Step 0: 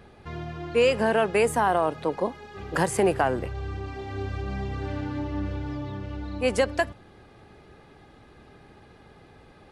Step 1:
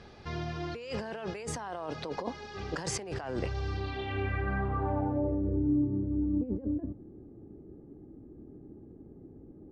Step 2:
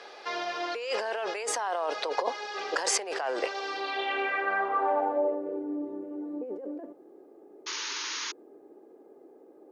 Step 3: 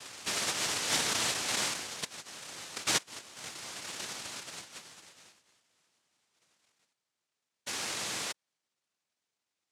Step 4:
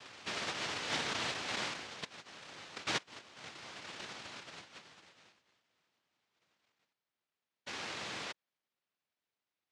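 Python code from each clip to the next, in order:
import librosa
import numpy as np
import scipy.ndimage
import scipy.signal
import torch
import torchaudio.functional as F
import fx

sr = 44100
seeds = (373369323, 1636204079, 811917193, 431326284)

y1 = fx.over_compress(x, sr, threshold_db=-30.0, ratio=-1.0)
y1 = fx.filter_sweep_lowpass(y1, sr, from_hz=5400.0, to_hz=310.0, start_s=3.68, end_s=5.67, q=3.1)
y1 = F.gain(torch.from_numpy(y1), -4.5).numpy()
y2 = scipy.signal.sosfilt(scipy.signal.butter(4, 460.0, 'highpass', fs=sr, output='sos'), y1)
y2 = fx.spec_paint(y2, sr, seeds[0], shape='noise', start_s=7.66, length_s=0.66, low_hz=850.0, high_hz=6800.0, level_db=-44.0)
y2 = F.gain(torch.from_numpy(y2), 9.0).numpy()
y3 = fx.filter_sweep_highpass(y2, sr, from_hz=200.0, to_hz=3800.0, start_s=1.13, end_s=2.12, q=1.0)
y3 = fx.noise_vocoder(y3, sr, seeds[1], bands=1)
y4 = scipy.signal.sosfilt(scipy.signal.butter(2, 3800.0, 'lowpass', fs=sr, output='sos'), y3)
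y4 = F.gain(torch.from_numpy(y4), -3.0).numpy()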